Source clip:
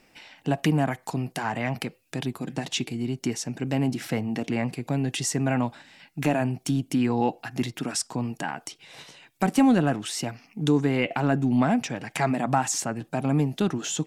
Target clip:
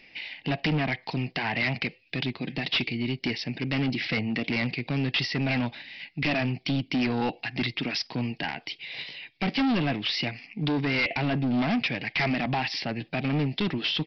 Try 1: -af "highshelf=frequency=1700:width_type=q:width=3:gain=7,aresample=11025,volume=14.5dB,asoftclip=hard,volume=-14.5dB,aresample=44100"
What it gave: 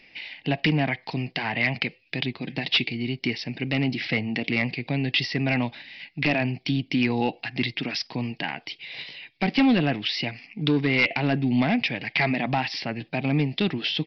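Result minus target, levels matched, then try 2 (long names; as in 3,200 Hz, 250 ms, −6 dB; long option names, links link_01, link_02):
gain into a clipping stage and back: distortion −9 dB
-af "highshelf=frequency=1700:width_type=q:width=3:gain=7,aresample=11025,volume=22dB,asoftclip=hard,volume=-22dB,aresample=44100"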